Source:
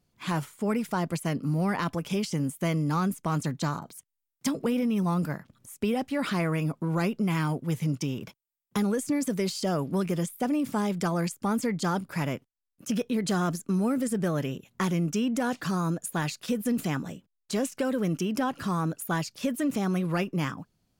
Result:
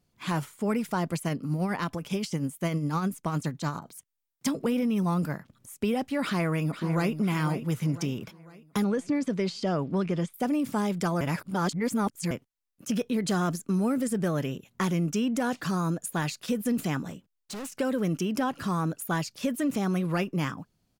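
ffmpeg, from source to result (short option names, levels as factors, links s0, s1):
-filter_complex "[0:a]asplit=3[s0][s1][s2];[s0]afade=t=out:st=1.28:d=0.02[s3];[s1]tremolo=f=9.8:d=0.45,afade=t=in:st=1.28:d=0.02,afade=t=out:st=3.91:d=0.02[s4];[s2]afade=t=in:st=3.91:d=0.02[s5];[s3][s4][s5]amix=inputs=3:normalize=0,asplit=2[s6][s7];[s7]afade=t=in:st=6.22:d=0.01,afade=t=out:st=7.18:d=0.01,aecho=0:1:500|1000|1500|2000|2500:0.298538|0.134342|0.060454|0.0272043|0.0122419[s8];[s6][s8]amix=inputs=2:normalize=0,asettb=1/sr,asplit=3[s9][s10][s11];[s9]atrim=end=8.844[s12];[s10]atrim=start=8.84:end=10.34,asetpts=PTS-STARTPTS,afade=t=in:d=0.004:c=qsin,afade=t=out:st=1.496:d=0.004:c=qsin,lowpass=4400[s13];[s11]atrim=start=10.336[s14];[s12][s13]acrossfade=d=0.004:c1=hsin:c2=qsin[s15];[s15][s14]acrossfade=d=0.004:c1=qsin:c2=hsin,asettb=1/sr,asplit=3[s16][s17][s18];[s16]atrim=end=17.104[s19];[s17]atrim=start=17.1:end=17.77,asetpts=PTS-STARTPTS,afade=t=in:d=0.004:c=qsin,afade=t=out:st=0.666:d=0.004:c=qsin,asoftclip=type=hard:threshold=0.0178[s20];[s18]atrim=start=17.766[s21];[s19][s20]acrossfade=d=0.004:c1=hsin:c2=qsin[s22];[s22][s21]acrossfade=d=0.004:c1=qsin:c2=hsin,asplit=3[s23][s24][s25];[s23]atrim=end=11.212[s26];[s24]atrim=start=11.208:end=12.312,asetpts=PTS-STARTPTS,areverse[s27];[s25]atrim=start=12.308[s28];[s26][s27]acrossfade=d=0.004:c1=hsin:c2=hsin[s29];[s29][s28]acrossfade=d=0.004:c1=hsin:c2=hsin"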